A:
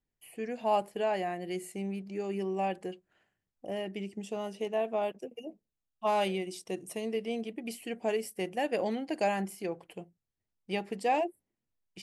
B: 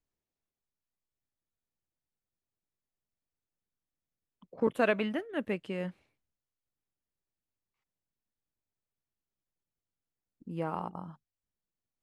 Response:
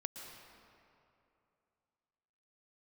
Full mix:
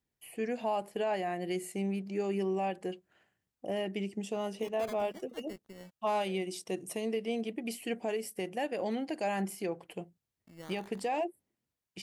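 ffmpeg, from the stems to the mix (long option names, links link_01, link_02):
-filter_complex "[0:a]highpass=55,volume=2.5dB[link_01];[1:a]acrusher=samples=14:mix=1:aa=0.000001:lfo=1:lforange=8.4:lforate=0.22,aeval=exprs='sgn(val(0))*max(abs(val(0))-0.00531,0)':channel_layout=same,volume=-12.5dB[link_02];[link_01][link_02]amix=inputs=2:normalize=0,alimiter=limit=-24dB:level=0:latency=1:release=214"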